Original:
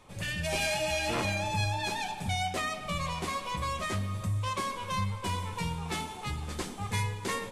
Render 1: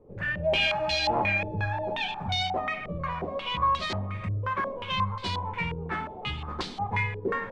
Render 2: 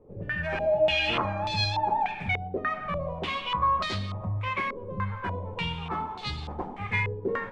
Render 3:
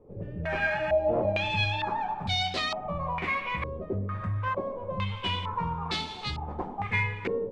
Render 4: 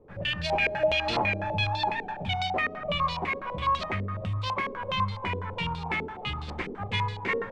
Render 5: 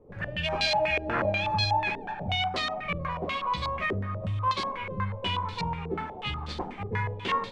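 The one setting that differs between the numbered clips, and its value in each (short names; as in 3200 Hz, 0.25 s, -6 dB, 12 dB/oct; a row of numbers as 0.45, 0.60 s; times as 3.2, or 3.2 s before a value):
stepped low-pass, rate: 5.6, 3.4, 2.2, 12, 8.2 Hz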